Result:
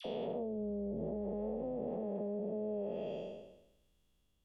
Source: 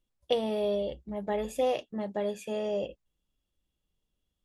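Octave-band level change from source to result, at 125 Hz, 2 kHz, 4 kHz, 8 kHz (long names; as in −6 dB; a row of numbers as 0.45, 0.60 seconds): −1.0 dB, below −15 dB, below −15 dB, below −25 dB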